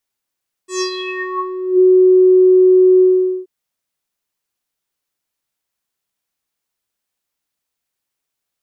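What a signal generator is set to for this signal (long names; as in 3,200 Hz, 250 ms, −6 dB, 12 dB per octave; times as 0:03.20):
subtractive voice square F#4 12 dB per octave, low-pass 370 Hz, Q 8.1, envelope 4.5 octaves, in 1.10 s, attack 131 ms, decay 0.09 s, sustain −8 dB, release 0.45 s, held 2.33 s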